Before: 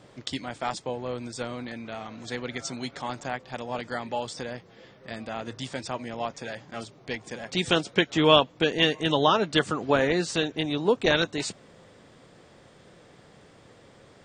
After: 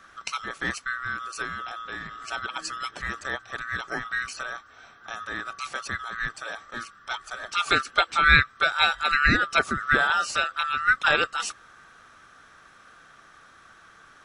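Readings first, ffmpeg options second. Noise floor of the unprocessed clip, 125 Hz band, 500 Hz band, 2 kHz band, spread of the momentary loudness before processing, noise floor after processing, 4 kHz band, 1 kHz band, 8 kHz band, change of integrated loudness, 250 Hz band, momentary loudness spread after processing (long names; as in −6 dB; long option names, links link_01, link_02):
−54 dBFS, −3.5 dB, −10.0 dB, +9.5 dB, 15 LU, −53 dBFS, −1.5 dB, +3.5 dB, +1.5 dB, +2.0 dB, −9.0 dB, 15 LU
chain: -af "afftfilt=real='real(if(lt(b,960),b+48*(1-2*mod(floor(b/48),2)),b),0)':imag='imag(if(lt(b,960),b+48*(1-2*mod(floor(b/48),2)),b),0)':win_size=2048:overlap=0.75,volume=1dB"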